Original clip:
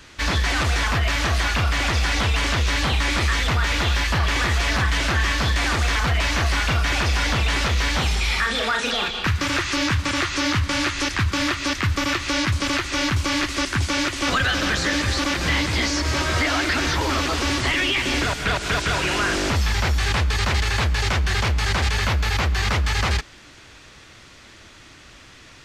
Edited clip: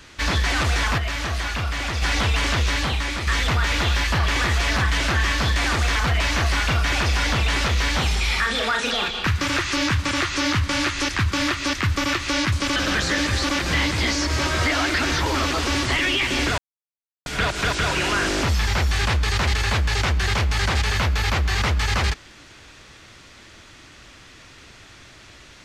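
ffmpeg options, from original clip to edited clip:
ffmpeg -i in.wav -filter_complex "[0:a]asplit=6[link_01][link_02][link_03][link_04][link_05][link_06];[link_01]atrim=end=0.982[link_07];[link_02]atrim=start=0.978:end=2.022,asetpts=PTS-STARTPTS,volume=-4.5dB[link_08];[link_03]atrim=start=2.018:end=3.27,asetpts=PTS-STARTPTS,afade=type=out:start_time=0.622:duration=0.63:silence=0.446684[link_09];[link_04]atrim=start=3.27:end=12.762,asetpts=PTS-STARTPTS,afade=type=in:duration=0.004:curve=hsin:silence=0.446684[link_10];[link_05]atrim=start=14.508:end=18.33,asetpts=PTS-STARTPTS,afade=type=out:start_time=3.818:duration=0.004:curve=hsin,apad=pad_dur=0.68[link_11];[link_06]atrim=start=18.33,asetpts=PTS-STARTPTS,afade=type=in:duration=0.004:curve=hsin[link_12];[link_07][link_08]acrossfade=duration=0.004:curve1=hsin:curve2=hsin[link_13];[link_09][link_10]concat=n=2:v=0:a=1[link_14];[link_13][link_14]acrossfade=duration=0.004:curve1=hsin:curve2=hsin[link_15];[link_11][link_12]concat=n=2:v=0:a=1[link_16];[link_15][link_16]acrossfade=duration=0.004:curve1=hsin:curve2=hsin" out.wav

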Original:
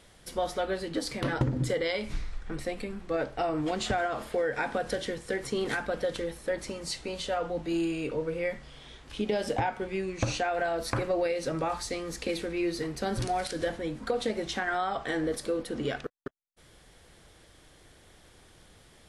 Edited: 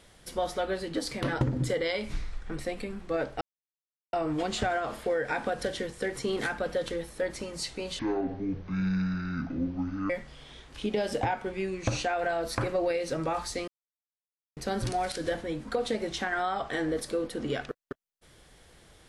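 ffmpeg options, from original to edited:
ffmpeg -i in.wav -filter_complex "[0:a]asplit=6[link_01][link_02][link_03][link_04][link_05][link_06];[link_01]atrim=end=3.41,asetpts=PTS-STARTPTS,afade=type=out:start_time=3.406:duration=0.004:curve=hsin,apad=pad_dur=0.72[link_07];[link_02]atrim=start=3.41:end=7.274,asetpts=PTS-STARTPTS,afade=type=in:duration=0.004:curve=hsin[link_08];[link_03]atrim=start=7.27:end=8.45,asetpts=PTS-STARTPTS,asetrate=24696,aresample=44100[link_09];[link_04]atrim=start=8.446:end=12.03,asetpts=PTS-STARTPTS,afade=type=out:start_time=3.58:duration=0.004:curve=hsin[link_10];[link_05]atrim=start=12.03:end=12.92,asetpts=PTS-STARTPTS,volume=0[link_11];[link_06]atrim=start=12.92,asetpts=PTS-STARTPTS,afade=type=in:duration=0.004:curve=hsin[link_12];[link_07][link_08]concat=n=2:v=0:a=1[link_13];[link_13][link_09]acrossfade=duration=0.004:curve1=hsin:curve2=hsin[link_14];[link_10][link_11][link_12]concat=n=3:v=0:a=1[link_15];[link_14][link_15]acrossfade=duration=0.004:curve1=hsin:curve2=hsin" out.wav

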